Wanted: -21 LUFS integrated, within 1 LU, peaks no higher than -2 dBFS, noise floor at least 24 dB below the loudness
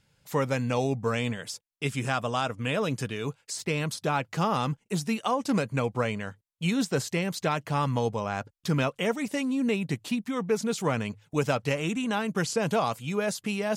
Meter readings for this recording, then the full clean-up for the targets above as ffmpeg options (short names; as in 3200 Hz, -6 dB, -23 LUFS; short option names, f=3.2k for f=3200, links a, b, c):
loudness -29.0 LUFS; peak -12.5 dBFS; loudness target -21.0 LUFS
-> -af "volume=8dB"